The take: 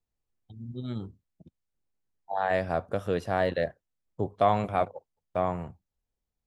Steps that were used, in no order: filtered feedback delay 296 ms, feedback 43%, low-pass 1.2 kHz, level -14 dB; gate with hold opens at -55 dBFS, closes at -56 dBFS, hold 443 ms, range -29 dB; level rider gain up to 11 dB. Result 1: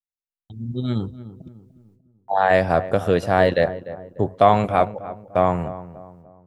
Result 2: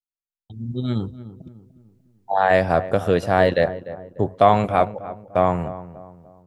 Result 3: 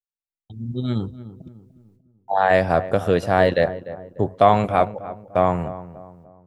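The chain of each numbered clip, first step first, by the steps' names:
gate with hold > level rider > filtered feedback delay; level rider > filtered feedback delay > gate with hold; level rider > gate with hold > filtered feedback delay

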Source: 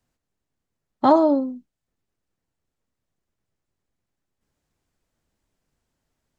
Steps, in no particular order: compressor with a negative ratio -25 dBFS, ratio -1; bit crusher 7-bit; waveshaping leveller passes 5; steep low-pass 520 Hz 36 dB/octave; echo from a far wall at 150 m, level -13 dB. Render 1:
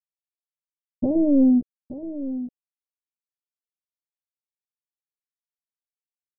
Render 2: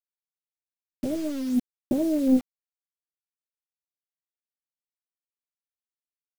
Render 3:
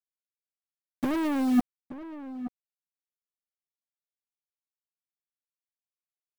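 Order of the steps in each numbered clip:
compressor with a negative ratio > waveshaping leveller > echo from a far wall > bit crusher > steep low-pass; echo from a far wall > waveshaping leveller > steep low-pass > compressor with a negative ratio > bit crusher; steep low-pass > waveshaping leveller > compressor with a negative ratio > bit crusher > echo from a far wall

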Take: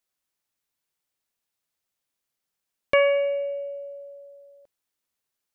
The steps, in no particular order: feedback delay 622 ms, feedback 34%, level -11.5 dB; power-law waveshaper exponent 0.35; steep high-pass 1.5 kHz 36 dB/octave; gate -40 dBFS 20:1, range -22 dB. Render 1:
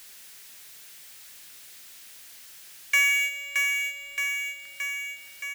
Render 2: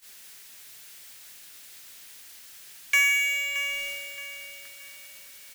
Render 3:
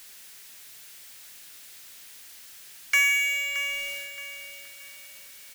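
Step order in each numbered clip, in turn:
steep high-pass > gate > feedback delay > power-law waveshaper; steep high-pass > power-law waveshaper > gate > feedback delay; gate > steep high-pass > power-law waveshaper > feedback delay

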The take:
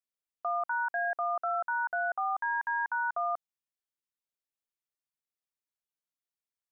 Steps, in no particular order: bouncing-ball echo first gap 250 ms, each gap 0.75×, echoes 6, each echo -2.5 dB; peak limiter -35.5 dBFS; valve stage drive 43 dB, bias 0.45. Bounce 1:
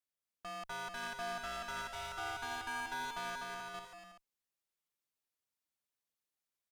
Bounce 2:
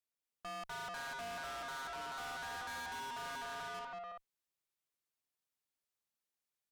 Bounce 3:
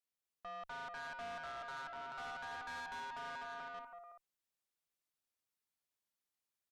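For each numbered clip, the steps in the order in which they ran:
valve stage > peak limiter > bouncing-ball echo; bouncing-ball echo > valve stage > peak limiter; peak limiter > bouncing-ball echo > valve stage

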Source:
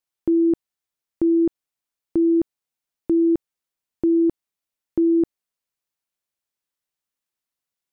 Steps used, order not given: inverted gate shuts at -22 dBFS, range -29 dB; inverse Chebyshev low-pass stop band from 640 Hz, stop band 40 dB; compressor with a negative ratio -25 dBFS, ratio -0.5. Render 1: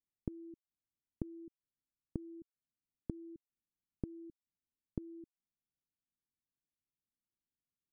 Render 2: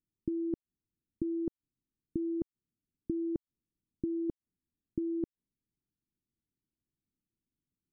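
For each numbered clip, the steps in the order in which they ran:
inverse Chebyshev low-pass > inverted gate > compressor with a negative ratio; compressor with a negative ratio > inverse Chebyshev low-pass > inverted gate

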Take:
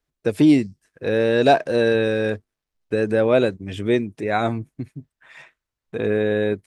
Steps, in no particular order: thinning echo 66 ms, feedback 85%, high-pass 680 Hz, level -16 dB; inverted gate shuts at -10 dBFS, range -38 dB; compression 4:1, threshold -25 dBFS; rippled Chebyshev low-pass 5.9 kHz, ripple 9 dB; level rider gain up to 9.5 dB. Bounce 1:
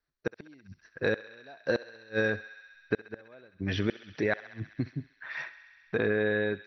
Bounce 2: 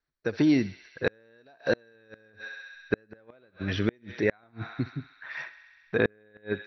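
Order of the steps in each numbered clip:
inverted gate > rippled Chebyshev low-pass > level rider > compression > thinning echo; rippled Chebyshev low-pass > compression > level rider > thinning echo > inverted gate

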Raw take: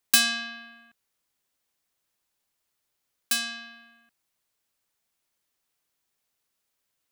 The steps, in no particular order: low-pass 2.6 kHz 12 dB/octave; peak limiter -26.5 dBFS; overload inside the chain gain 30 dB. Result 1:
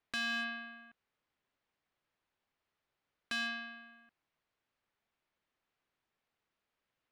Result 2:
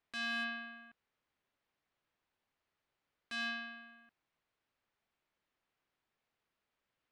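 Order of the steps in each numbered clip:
low-pass > peak limiter > overload inside the chain; peak limiter > low-pass > overload inside the chain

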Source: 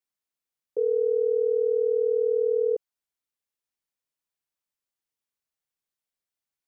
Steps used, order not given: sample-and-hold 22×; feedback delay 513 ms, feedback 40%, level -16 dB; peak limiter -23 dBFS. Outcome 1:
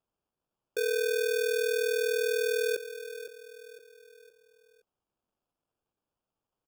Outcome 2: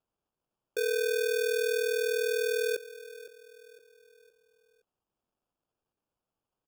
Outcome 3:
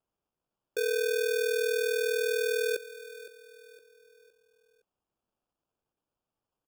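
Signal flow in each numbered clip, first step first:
feedback delay > sample-and-hold > peak limiter; peak limiter > feedback delay > sample-and-hold; sample-and-hold > peak limiter > feedback delay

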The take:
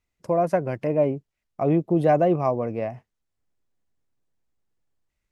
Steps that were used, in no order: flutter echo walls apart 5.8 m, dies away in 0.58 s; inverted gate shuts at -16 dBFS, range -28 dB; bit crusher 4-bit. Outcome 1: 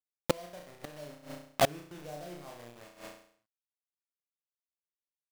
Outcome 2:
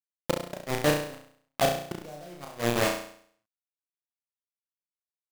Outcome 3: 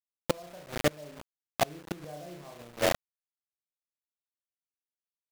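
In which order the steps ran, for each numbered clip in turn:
bit crusher > flutter echo > inverted gate; bit crusher > inverted gate > flutter echo; flutter echo > bit crusher > inverted gate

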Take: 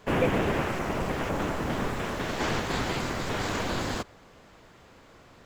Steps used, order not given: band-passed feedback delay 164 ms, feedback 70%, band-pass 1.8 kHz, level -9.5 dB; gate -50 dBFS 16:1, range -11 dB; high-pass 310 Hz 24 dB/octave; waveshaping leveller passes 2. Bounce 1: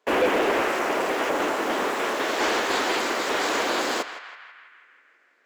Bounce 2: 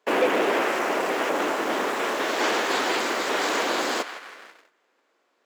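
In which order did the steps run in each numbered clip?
high-pass > gate > waveshaping leveller > band-passed feedback delay; band-passed feedback delay > gate > waveshaping leveller > high-pass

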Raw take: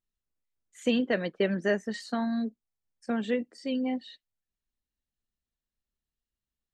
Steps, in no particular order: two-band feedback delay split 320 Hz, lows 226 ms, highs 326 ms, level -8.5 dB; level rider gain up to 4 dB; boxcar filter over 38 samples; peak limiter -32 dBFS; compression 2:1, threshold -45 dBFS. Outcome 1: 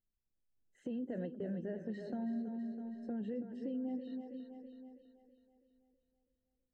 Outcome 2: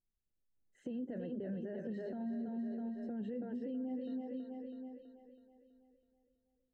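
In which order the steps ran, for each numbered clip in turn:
boxcar filter > peak limiter > two-band feedback delay > compression > level rider; two-band feedback delay > peak limiter > boxcar filter > compression > level rider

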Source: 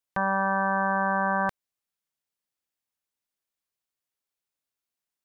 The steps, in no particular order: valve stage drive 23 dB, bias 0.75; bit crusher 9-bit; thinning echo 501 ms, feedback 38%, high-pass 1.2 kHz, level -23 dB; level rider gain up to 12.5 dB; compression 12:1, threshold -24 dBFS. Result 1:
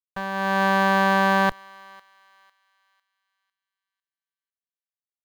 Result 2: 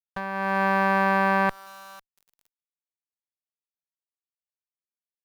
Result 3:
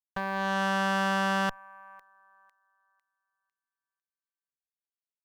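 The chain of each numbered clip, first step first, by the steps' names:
valve stage > bit crusher > thinning echo > compression > level rider; thinning echo > bit crusher > compression > valve stage > level rider; compression > level rider > bit crusher > thinning echo > valve stage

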